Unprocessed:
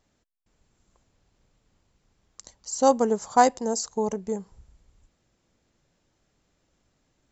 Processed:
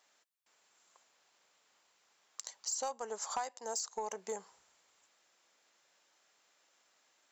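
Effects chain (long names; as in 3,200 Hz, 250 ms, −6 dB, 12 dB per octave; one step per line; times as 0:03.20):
high-pass filter 850 Hz 12 dB per octave
downward compressor 10 to 1, threshold −38 dBFS, peak gain reduction 22 dB
soft clipping −30.5 dBFS, distortion −19 dB
level +4.5 dB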